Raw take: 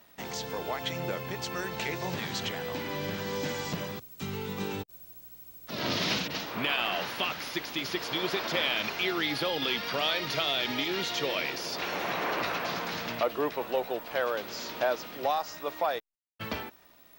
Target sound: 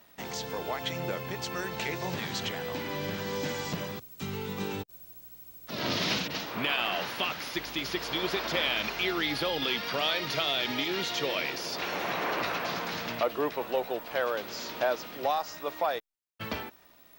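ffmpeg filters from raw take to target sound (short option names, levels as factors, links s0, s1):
-filter_complex "[0:a]asettb=1/sr,asplit=3[s0][s1][s2];[s0]atrim=end=7.554[s3];[s1]atrim=start=7.55:end=9.62,asetpts=PTS-STARTPTS,afade=t=in:d=0.004:c=qsin,afade=t=out:st=2.066:d=0.004:c=qsin,aeval=exprs='val(0)+0.00251*(sin(2*PI*50*n/s)+sin(2*PI*2*50*n/s)/2+sin(2*PI*3*50*n/s)/3+sin(2*PI*4*50*n/s)/4+sin(2*PI*5*50*n/s)/5)':c=same[s4];[s2]atrim=start=9.616[s5];[s3][s4]acrossfade=d=0.004:c1=hsin:c2=qsin[s6];[s6][s5]acrossfade=d=0.004:c1=qsin:c2=hsin"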